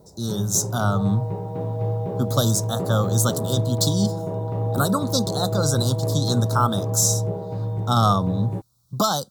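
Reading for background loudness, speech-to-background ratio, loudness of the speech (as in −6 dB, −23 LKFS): −26.5 LKFS, 3.0 dB, −23.5 LKFS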